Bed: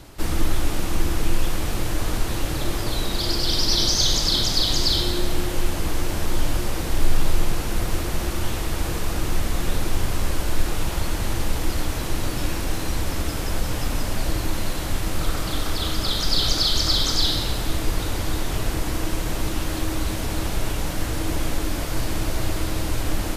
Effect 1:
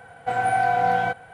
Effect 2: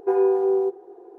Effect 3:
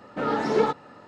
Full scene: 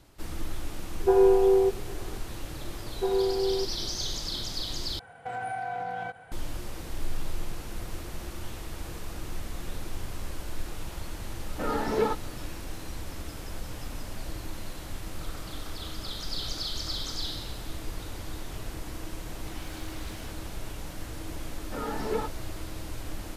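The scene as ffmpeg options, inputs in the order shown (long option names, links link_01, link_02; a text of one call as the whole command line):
ffmpeg -i bed.wav -i cue0.wav -i cue1.wav -i cue2.wav -filter_complex "[2:a]asplit=2[link_01][link_02];[1:a]asplit=2[link_03][link_04];[3:a]asplit=2[link_05][link_06];[0:a]volume=-13dB[link_07];[link_03]acompressor=threshold=-24dB:ratio=6:attack=0.13:release=192:knee=1:detection=peak[link_08];[link_04]aeval=exprs='0.0447*(abs(mod(val(0)/0.0447+3,4)-2)-1)':channel_layout=same[link_09];[link_07]asplit=2[link_10][link_11];[link_10]atrim=end=4.994[link_12];[link_08]atrim=end=1.33,asetpts=PTS-STARTPTS,volume=-4.5dB[link_13];[link_11]atrim=start=6.316[link_14];[link_01]atrim=end=1.18,asetpts=PTS-STARTPTS,afade=type=in:duration=0.004:curve=hsin,afade=type=out:start_time=1.176:duration=0.004:curve=hsin,adelay=1000[link_15];[link_02]atrim=end=1.18,asetpts=PTS-STARTPTS,volume=-7dB,afade=type=in:duration=0.004:curve=hsin,afade=type=out:start_time=1.176:duration=0.004:curve=hsin,adelay=2950[link_16];[link_05]atrim=end=1.07,asetpts=PTS-STARTPTS,volume=-4.5dB,afade=type=in:duration=0.004:curve=hsin,afade=type=out:start_time=1.066:duration=0.004:curve=hsin,adelay=11420[link_17];[link_09]atrim=end=1.33,asetpts=PTS-STARTPTS,volume=-17.5dB,afade=type=in:duration=0.004:curve=hsin,afade=type=out:start_time=1.326:duration=0.004:curve=hsin,adelay=19190[link_18];[link_06]atrim=end=1.07,asetpts=PTS-STARTPTS,volume=-9dB,afade=type=in:duration=0.004:curve=hsin,afade=type=out:start_time=1.066:duration=0.004:curve=hsin,adelay=21550[link_19];[link_12][link_13]acrossfade=duration=0.004:curve1=hsin:curve2=hsin[link_20];[link_20][link_14]acrossfade=duration=0.004:curve1=hsin:curve2=hsin[link_21];[link_21][link_15][link_16][link_17][link_18][link_19]amix=inputs=6:normalize=0" out.wav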